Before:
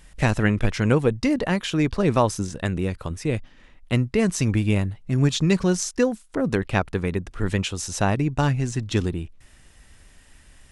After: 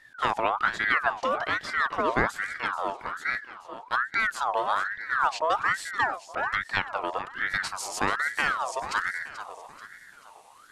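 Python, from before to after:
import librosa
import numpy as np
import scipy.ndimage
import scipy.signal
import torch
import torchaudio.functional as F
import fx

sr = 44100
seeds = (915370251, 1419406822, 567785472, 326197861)

y = fx.high_shelf(x, sr, hz=5300.0, db=fx.steps((0.0, -10.0), (7.52, 3.0)))
y = fx.echo_feedback(y, sr, ms=435, feedback_pct=45, wet_db=-12.0)
y = fx.ring_lfo(y, sr, carrier_hz=1300.0, swing_pct=40, hz=1.2)
y = F.gain(torch.from_numpy(y), -3.0).numpy()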